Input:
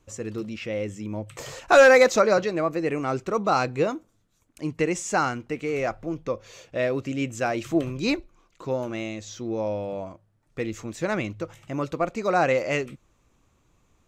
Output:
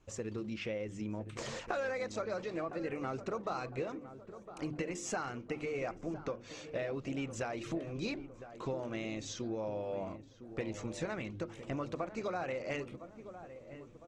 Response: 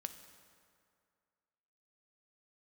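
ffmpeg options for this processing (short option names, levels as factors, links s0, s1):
-filter_complex "[0:a]lowpass=6700,bandreject=f=50:t=h:w=6,bandreject=f=100:t=h:w=6,bandreject=f=150:t=h:w=6,bandreject=f=200:t=h:w=6,bandreject=f=250:t=h:w=6,bandreject=f=300:t=h:w=6,bandreject=f=350:t=h:w=6,acompressor=threshold=0.0224:ratio=10,asplit=2[s0][s1];[s1]adelay=1009,lowpass=f=1200:p=1,volume=0.266,asplit=2[s2][s3];[s3]adelay=1009,lowpass=f=1200:p=1,volume=0.54,asplit=2[s4][s5];[s5]adelay=1009,lowpass=f=1200:p=1,volume=0.54,asplit=2[s6][s7];[s7]adelay=1009,lowpass=f=1200:p=1,volume=0.54,asplit=2[s8][s9];[s9]adelay=1009,lowpass=f=1200:p=1,volume=0.54,asplit=2[s10][s11];[s11]adelay=1009,lowpass=f=1200:p=1,volume=0.54[s12];[s0][s2][s4][s6][s8][s10][s12]amix=inputs=7:normalize=0,volume=0.841" -ar 48000 -c:a libopus -b:a 16k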